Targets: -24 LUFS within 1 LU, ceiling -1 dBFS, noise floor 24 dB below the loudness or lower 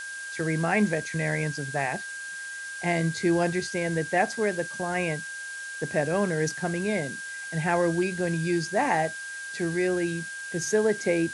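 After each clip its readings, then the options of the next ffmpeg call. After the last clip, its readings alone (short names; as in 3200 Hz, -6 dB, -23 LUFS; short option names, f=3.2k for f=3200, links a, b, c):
steady tone 1600 Hz; tone level -35 dBFS; noise floor -37 dBFS; noise floor target -52 dBFS; loudness -27.5 LUFS; peak -10.0 dBFS; loudness target -24.0 LUFS
-> -af "bandreject=f=1.6k:w=30"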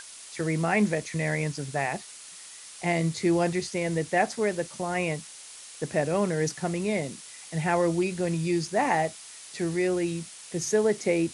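steady tone none; noise floor -46 dBFS; noise floor target -52 dBFS
-> -af "afftdn=nr=6:nf=-46"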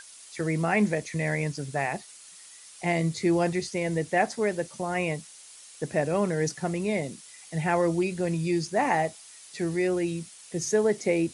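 noise floor -49 dBFS; noise floor target -52 dBFS
-> -af "afftdn=nr=6:nf=-49"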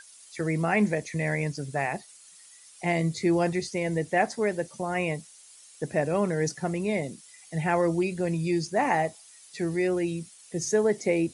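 noise floor -52 dBFS; loudness -28.0 LUFS; peak -10.0 dBFS; loudness target -24.0 LUFS
-> -af "volume=4dB"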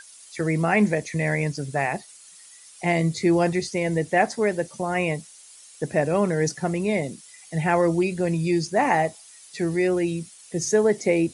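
loudness -24.0 LUFS; peak -6.0 dBFS; noise floor -48 dBFS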